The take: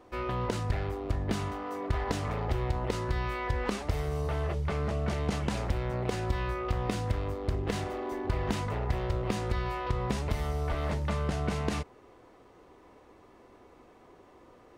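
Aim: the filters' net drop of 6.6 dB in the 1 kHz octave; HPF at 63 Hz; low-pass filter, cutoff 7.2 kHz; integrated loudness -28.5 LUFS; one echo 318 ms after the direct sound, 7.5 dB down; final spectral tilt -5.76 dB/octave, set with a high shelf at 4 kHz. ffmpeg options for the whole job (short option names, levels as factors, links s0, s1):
-af "highpass=63,lowpass=7200,equalizer=f=1000:t=o:g=-9,highshelf=f=4000:g=4.5,aecho=1:1:318:0.422,volume=1.78"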